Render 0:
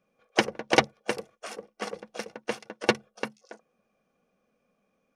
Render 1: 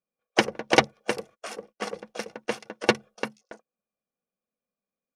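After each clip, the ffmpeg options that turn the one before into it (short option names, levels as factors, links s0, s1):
-af "agate=range=0.0794:threshold=0.00316:ratio=16:detection=peak,volume=1.26"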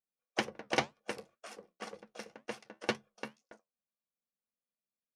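-af "equalizer=f=440:t=o:w=0.65:g=-2.5,flanger=delay=8.3:depth=5.6:regen=-64:speed=2:shape=sinusoidal,volume=0.447"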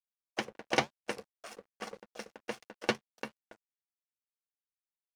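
-af "dynaudnorm=f=100:g=11:m=2.24,aeval=exprs='sgn(val(0))*max(abs(val(0))-0.00266,0)':c=same,volume=0.631"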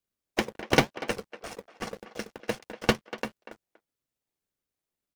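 -filter_complex "[0:a]asplit=2[s0][s1];[s1]acrusher=samples=39:mix=1:aa=0.000001:lfo=1:lforange=23.4:lforate=1.8,volume=0.562[s2];[s0][s2]amix=inputs=2:normalize=0,asplit=2[s3][s4];[s4]adelay=240,highpass=300,lowpass=3400,asoftclip=type=hard:threshold=0.106,volume=0.224[s5];[s3][s5]amix=inputs=2:normalize=0,volume=1.88"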